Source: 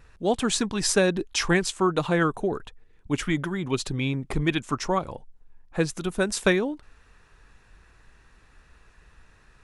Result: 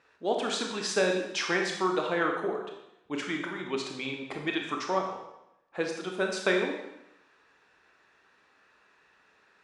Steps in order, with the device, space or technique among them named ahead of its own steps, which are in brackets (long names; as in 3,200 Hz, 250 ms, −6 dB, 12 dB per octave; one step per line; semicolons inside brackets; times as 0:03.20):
supermarket ceiling speaker (band-pass filter 340–5,100 Hz; convolution reverb RT60 0.85 s, pre-delay 22 ms, DRR 1.5 dB)
level −4.5 dB